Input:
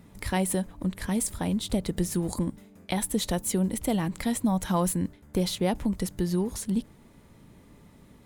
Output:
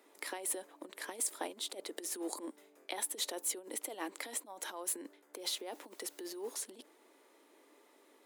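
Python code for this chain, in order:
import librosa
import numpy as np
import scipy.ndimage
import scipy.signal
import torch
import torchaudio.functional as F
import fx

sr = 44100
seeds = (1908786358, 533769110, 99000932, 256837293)

y = fx.quant_dither(x, sr, seeds[0], bits=10, dither='triangular', at=(5.39, 6.54))
y = fx.over_compress(y, sr, threshold_db=-28.0, ratio=-0.5)
y = scipy.signal.sosfilt(scipy.signal.butter(8, 310.0, 'highpass', fs=sr, output='sos'), y)
y = y * librosa.db_to_amplitude(-7.0)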